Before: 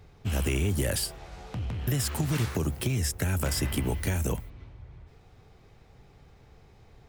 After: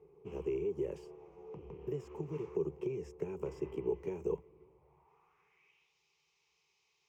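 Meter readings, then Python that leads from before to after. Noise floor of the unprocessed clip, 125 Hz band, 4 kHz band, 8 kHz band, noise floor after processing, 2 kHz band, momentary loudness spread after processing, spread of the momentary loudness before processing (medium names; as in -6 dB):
-57 dBFS, -19.5 dB, under -25 dB, under -30 dB, -78 dBFS, -23.5 dB, 12 LU, 11 LU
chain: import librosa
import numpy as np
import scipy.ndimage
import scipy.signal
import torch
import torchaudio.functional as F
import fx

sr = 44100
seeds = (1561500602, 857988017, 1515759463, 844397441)

y = fx.ripple_eq(x, sr, per_octave=0.75, db=14)
y = fx.rider(y, sr, range_db=10, speed_s=0.5)
y = fx.filter_sweep_bandpass(y, sr, from_hz=430.0, to_hz=4200.0, start_s=4.67, end_s=5.98, q=2.6)
y = F.gain(torch.from_numpy(y), -3.0).numpy()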